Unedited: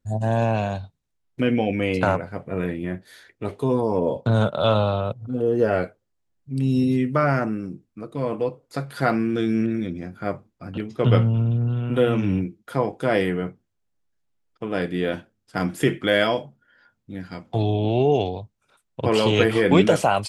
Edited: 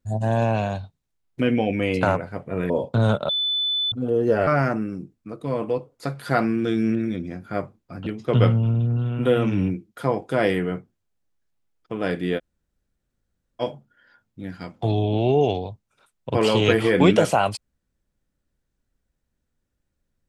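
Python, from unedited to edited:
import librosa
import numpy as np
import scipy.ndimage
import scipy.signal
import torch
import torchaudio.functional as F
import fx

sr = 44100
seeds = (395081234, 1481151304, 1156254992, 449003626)

y = fx.edit(x, sr, fx.cut(start_s=2.7, length_s=1.32),
    fx.bleep(start_s=4.61, length_s=0.63, hz=3500.0, db=-20.5),
    fx.cut(start_s=5.79, length_s=1.39),
    fx.room_tone_fill(start_s=15.09, length_s=1.23, crossfade_s=0.04), tone=tone)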